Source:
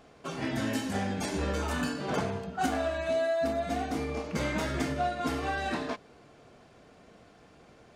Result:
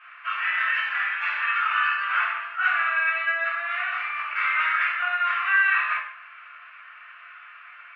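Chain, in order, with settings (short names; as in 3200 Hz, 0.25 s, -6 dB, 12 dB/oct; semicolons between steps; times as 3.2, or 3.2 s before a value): elliptic band-pass 1200–2700 Hz, stop band 70 dB; in parallel at -2.5 dB: compressor, threshold -53 dBFS, peak gain reduction 17 dB; on the sum: shoebox room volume 120 m³, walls mixed, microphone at 2.8 m; gain +6 dB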